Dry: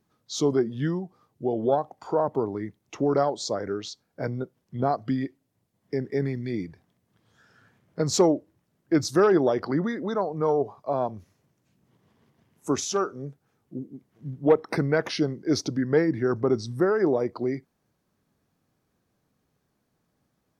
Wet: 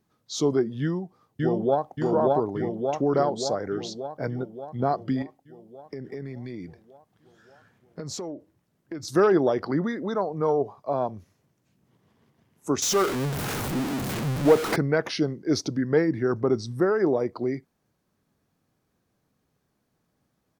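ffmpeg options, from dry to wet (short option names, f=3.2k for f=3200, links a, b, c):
-filter_complex "[0:a]asplit=2[a][b];[b]afade=t=in:st=0.81:d=0.01,afade=t=out:st=1.94:d=0.01,aecho=0:1:580|1160|1740|2320|2900|3480|4060|4640|5220|5800|6380:0.944061|0.61364|0.398866|0.259263|0.168521|0.109538|0.0712|0.04628|0.030082|0.0195533|0.0127096[c];[a][c]amix=inputs=2:normalize=0,asettb=1/sr,asplit=3[d][e][f];[d]atrim=end=5.224[g];[e]atrim=start=5.22:end=9.08,asetpts=PTS-STARTPTS,afade=t=in:d=0.004:c=qsin,afade=t=out:st=3.856:d=0.004:c=qsin,acompressor=threshold=-32dB:ratio=6:attack=3.2:release=140:knee=1:detection=peak[h];[f]atrim=start=9.076[i];[g][h]acrossfade=d=0.004:c1=hsin:c2=qsin[j];[j][i]acrossfade=d=0.004:c1=qsin:c2=hsin,asettb=1/sr,asplit=3[k][l][m];[k]atrim=end=12.824[n];[l]atrim=start=12.82:end=14.76,asetpts=PTS-STARTPTS,afade=t=in:d=0.004:c=qsin,afade=t=out:st=1.936:d=0.004:c=qsin,aeval=exprs='val(0)+0.5*0.0668*sgn(val(0))':c=same[o];[m]atrim=start=14.756[p];[n][o]acrossfade=d=0.004:c1=hsin:c2=qsin[q];[q][p]acrossfade=d=0.004:c1=qsin:c2=hsin"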